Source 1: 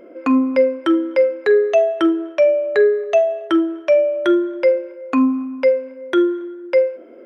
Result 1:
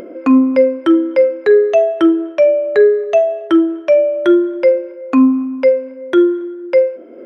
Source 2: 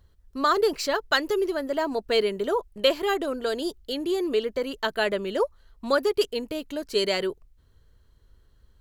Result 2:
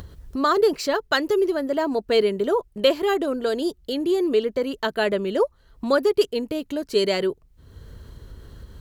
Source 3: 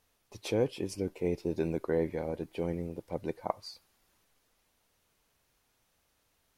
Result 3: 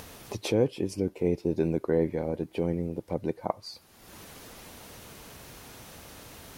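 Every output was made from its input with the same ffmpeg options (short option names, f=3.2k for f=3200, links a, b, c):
-af "highpass=f=110:p=1,lowshelf=f=460:g=8.5,acompressor=mode=upward:threshold=-26dB:ratio=2.5"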